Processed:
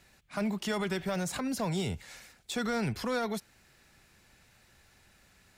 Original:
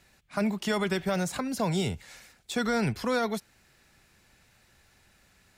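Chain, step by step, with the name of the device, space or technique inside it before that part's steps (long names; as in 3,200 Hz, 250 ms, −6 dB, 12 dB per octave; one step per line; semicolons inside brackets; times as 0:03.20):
clipper into limiter (hard clipping −21.5 dBFS, distortion −22 dB; brickwall limiter −25.5 dBFS, peak gain reduction 4 dB)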